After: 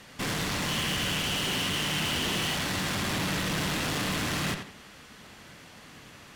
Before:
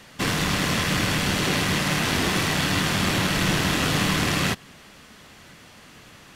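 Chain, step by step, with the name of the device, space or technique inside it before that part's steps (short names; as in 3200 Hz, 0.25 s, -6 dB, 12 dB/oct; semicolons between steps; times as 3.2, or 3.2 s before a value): 0.68–2.55 bell 3000 Hz +13 dB 0.24 oct; rockabilly slapback (tube stage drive 28 dB, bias 0.55; tape echo 87 ms, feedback 33%, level -5 dB, low-pass 4200 Hz)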